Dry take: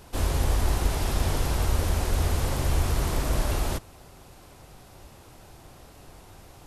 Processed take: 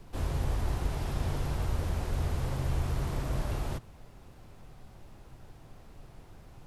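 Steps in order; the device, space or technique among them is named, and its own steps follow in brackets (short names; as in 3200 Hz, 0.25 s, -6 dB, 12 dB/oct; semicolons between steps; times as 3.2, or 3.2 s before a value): car interior (bell 130 Hz +7 dB 0.78 oct; high shelf 4300 Hz -8 dB; brown noise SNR 18 dB); gain -7.5 dB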